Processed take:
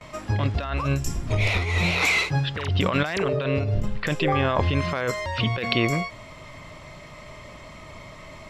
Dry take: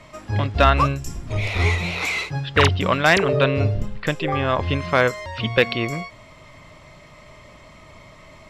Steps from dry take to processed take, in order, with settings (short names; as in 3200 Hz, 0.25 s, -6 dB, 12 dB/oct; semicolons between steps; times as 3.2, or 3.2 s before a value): gate with hold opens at -38 dBFS; negative-ratio compressor -23 dBFS, ratio -1